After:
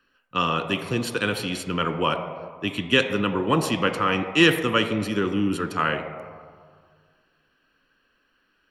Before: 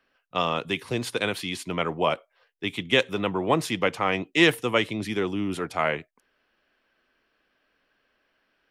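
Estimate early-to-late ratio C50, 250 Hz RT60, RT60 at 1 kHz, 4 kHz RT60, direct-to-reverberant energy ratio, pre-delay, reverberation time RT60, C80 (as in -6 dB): 9.5 dB, 2.0 s, 1.9 s, 0.85 s, 7.5 dB, 4 ms, 1.9 s, 10.5 dB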